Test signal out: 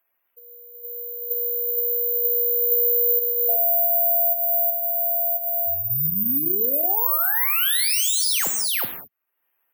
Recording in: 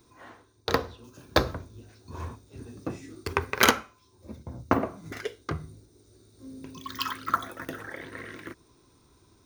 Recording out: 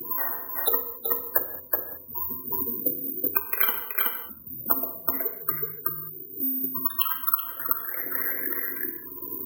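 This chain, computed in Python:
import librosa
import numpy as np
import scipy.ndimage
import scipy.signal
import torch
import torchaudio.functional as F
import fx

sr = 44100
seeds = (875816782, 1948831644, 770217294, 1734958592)

p1 = fx.wiener(x, sr, points=9)
p2 = fx.quant_companded(p1, sr, bits=4)
p3 = p1 + (p2 * 10.0 ** (-4.5 / 20.0))
p4 = fx.high_shelf(p3, sr, hz=9800.0, db=-9.0)
p5 = fx.spec_gate(p4, sr, threshold_db=-10, keep='strong')
p6 = fx.highpass(p5, sr, hz=860.0, slope=6)
p7 = p6 + fx.echo_single(p6, sr, ms=374, db=-5.0, dry=0)
p8 = fx.rev_gated(p7, sr, seeds[0], gate_ms=230, shape='falling', drr_db=6.5)
p9 = (np.kron(p8[::3], np.eye(3)[0]) * 3)[:len(p8)]
p10 = fx.high_shelf(p9, sr, hz=3900.0, db=5.5)
p11 = fx.band_squash(p10, sr, depth_pct=100)
y = p11 * 10.0 ** (-4.0 / 20.0)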